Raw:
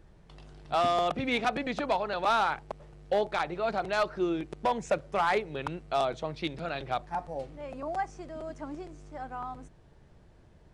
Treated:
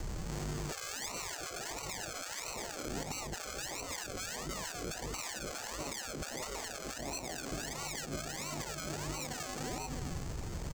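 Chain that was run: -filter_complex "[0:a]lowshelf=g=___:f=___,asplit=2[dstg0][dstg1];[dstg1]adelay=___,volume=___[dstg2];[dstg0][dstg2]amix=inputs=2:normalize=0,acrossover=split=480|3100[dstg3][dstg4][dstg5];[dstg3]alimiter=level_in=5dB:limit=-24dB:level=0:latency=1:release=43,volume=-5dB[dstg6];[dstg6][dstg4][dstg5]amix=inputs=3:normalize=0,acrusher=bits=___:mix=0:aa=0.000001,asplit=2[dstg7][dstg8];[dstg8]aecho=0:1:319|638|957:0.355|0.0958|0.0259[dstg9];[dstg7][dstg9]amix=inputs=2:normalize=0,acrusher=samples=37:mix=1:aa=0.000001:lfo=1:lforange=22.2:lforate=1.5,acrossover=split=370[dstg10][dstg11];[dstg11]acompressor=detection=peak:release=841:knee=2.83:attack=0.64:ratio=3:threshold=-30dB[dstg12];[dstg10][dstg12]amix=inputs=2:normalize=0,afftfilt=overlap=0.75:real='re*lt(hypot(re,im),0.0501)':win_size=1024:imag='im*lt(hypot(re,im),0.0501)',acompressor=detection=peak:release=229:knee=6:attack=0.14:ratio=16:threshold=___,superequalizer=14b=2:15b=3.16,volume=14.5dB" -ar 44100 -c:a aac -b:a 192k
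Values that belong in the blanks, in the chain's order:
5, 340, 29, -9.5dB, 11, -45dB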